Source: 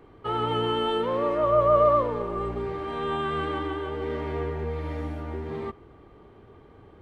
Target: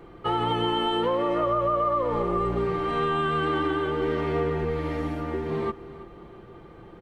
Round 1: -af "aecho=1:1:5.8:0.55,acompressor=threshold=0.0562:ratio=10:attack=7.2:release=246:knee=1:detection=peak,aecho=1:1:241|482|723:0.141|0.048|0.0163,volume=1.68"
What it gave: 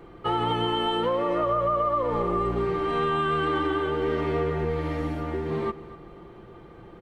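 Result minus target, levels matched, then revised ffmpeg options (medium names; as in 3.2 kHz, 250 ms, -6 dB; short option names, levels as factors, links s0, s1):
echo 87 ms early
-af "aecho=1:1:5.8:0.55,acompressor=threshold=0.0562:ratio=10:attack=7.2:release=246:knee=1:detection=peak,aecho=1:1:328|656|984:0.141|0.048|0.0163,volume=1.68"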